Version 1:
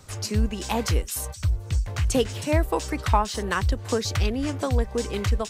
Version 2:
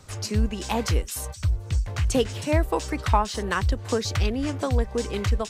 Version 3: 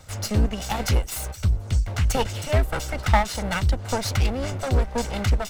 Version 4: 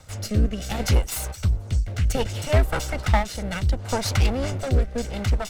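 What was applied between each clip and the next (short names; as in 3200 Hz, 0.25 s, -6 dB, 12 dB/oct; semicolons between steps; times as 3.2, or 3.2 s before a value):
high shelf 11000 Hz -6 dB
minimum comb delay 1.4 ms; gain +3 dB
rotary speaker horn 0.65 Hz; gain +2 dB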